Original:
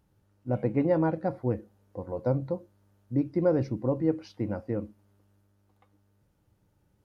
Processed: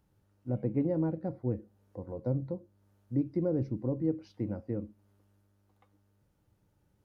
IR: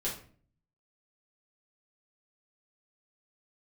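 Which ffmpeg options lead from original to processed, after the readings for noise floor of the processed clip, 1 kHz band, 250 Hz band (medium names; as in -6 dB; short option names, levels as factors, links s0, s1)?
-73 dBFS, -12.5 dB, -3.5 dB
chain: -filter_complex "[0:a]acrossover=split=470[s0][s1];[s1]acompressor=threshold=0.00224:ratio=2[s2];[s0][s2]amix=inputs=2:normalize=0,volume=0.75"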